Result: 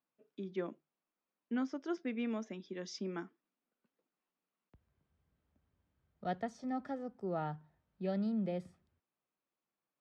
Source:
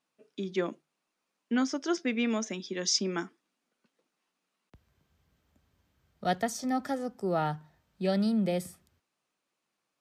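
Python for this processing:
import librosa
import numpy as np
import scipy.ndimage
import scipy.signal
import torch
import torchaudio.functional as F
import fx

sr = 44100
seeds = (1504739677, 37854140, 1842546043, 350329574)

y = fx.spacing_loss(x, sr, db_at_10k=25)
y = F.gain(torch.from_numpy(y), -7.0).numpy()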